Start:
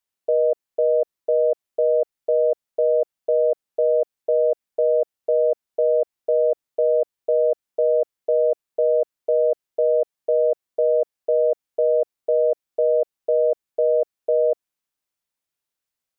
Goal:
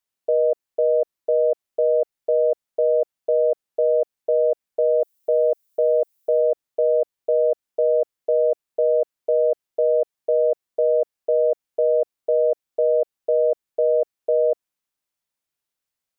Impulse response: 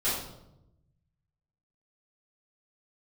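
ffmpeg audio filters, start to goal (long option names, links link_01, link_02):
-filter_complex "[0:a]asettb=1/sr,asplit=3[link_01][link_02][link_03];[link_01]atrim=end=5.004[link_04];[link_02]atrim=start=5:end=6.41,asetpts=PTS-STARTPTS,afade=type=in:duration=0.004:curve=qsin,afade=type=out:start_time=1.406:duration=0.004:curve=qsin,aemphasis=mode=production:type=75kf[link_05];[link_03]atrim=start=6.406[link_06];[link_04][link_05]acrossfade=duration=0.004:curve1=hsin:curve2=qsin[link_07];[link_07][link_06]acrossfade=duration=0.004:curve1=qsin:curve2=hsin"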